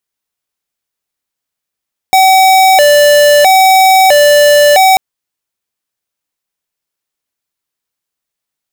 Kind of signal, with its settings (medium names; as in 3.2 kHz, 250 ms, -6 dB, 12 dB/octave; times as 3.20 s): siren hi-lo 586–760 Hz 0.76 per s square -5.5 dBFS 2.84 s